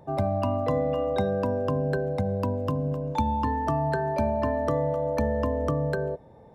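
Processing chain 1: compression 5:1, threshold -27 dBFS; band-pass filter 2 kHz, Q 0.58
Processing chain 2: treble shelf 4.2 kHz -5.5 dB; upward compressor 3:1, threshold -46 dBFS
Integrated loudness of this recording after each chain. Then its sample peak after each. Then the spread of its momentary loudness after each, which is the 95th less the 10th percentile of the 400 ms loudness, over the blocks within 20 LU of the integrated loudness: -38.5 LUFS, -27.0 LUFS; -18.5 dBFS, -14.0 dBFS; 5 LU, 2 LU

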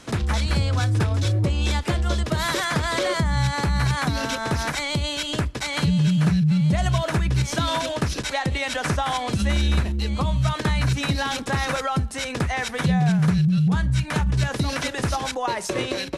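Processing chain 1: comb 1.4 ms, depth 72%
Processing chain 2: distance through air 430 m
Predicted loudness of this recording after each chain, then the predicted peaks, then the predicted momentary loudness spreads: -20.5 LUFS, -24.0 LUFS; -6.5 dBFS, -10.5 dBFS; 6 LU, 8 LU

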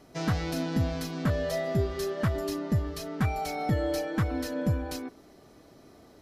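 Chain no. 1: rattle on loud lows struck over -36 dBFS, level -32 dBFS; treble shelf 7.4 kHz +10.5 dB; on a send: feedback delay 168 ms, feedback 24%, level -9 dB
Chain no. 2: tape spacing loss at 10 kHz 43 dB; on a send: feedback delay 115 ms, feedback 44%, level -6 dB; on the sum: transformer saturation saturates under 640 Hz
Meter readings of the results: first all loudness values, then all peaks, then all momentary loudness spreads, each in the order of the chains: -29.5 LUFS, -34.0 LUFS; -15.5 dBFS, -17.0 dBFS; 3 LU, 4 LU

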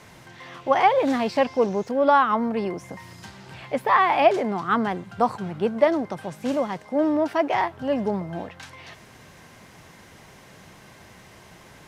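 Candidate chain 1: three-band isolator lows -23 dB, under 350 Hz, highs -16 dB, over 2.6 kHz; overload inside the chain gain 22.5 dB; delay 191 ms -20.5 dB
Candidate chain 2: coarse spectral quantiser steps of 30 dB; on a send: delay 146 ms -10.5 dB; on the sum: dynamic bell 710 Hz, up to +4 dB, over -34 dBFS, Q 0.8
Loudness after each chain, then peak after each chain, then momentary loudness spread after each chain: -28.5 LUFS, -20.5 LUFS; -21.5 dBFS, -2.5 dBFS; 20 LU, 13 LU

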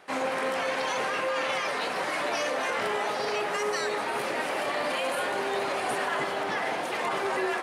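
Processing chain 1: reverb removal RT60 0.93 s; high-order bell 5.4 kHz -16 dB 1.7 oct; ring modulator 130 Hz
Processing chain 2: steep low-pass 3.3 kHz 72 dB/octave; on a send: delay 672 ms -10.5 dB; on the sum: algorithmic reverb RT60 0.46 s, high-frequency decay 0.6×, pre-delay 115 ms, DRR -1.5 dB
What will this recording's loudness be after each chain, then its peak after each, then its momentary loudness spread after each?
-34.5 LUFS, -24.5 LUFS; -20.0 dBFS, -12.0 dBFS; 2 LU, 2 LU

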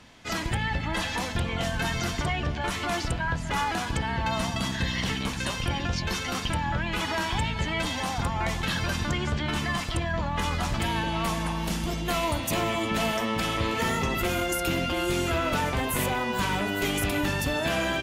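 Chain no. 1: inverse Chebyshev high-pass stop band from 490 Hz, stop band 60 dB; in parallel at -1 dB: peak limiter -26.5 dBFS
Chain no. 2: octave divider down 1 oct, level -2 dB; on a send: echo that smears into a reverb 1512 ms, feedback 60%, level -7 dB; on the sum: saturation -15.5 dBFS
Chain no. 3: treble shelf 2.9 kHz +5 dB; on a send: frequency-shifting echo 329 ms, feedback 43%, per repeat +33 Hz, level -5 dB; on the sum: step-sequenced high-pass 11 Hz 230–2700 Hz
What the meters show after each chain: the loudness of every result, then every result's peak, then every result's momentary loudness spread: -28.0 LUFS, -27.0 LUFS, -22.5 LUFS; -14.0 dBFS, -16.5 dBFS, -8.0 dBFS; 4 LU, 3 LU, 4 LU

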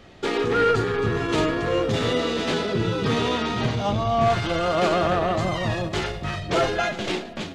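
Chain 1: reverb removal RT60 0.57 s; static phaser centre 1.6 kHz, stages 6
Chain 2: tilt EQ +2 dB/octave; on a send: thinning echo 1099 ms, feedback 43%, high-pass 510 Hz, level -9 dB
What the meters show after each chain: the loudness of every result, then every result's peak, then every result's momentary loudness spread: -28.5 LUFS, -23.5 LUFS; -12.0 dBFS, -11.0 dBFS; 7 LU, 5 LU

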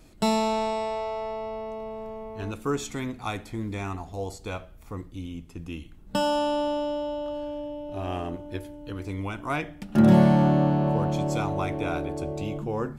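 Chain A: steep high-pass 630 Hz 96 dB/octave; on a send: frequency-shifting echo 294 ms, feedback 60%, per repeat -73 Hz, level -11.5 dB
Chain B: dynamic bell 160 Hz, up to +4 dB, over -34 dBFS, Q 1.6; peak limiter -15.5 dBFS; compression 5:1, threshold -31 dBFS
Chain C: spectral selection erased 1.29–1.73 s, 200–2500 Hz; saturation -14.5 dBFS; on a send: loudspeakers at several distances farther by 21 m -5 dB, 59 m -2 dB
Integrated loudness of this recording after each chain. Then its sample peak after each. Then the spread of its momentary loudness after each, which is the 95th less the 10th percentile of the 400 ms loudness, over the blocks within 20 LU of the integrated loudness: -33.5 LUFS, -36.0 LUFS, -25.5 LUFS; -16.0 dBFS, -16.0 dBFS, -8.5 dBFS; 18 LU, 6 LU, 16 LU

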